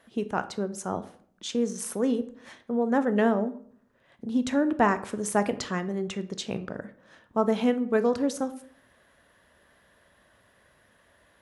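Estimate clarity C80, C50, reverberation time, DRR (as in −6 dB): 18.5 dB, 15.5 dB, 0.55 s, 11.0 dB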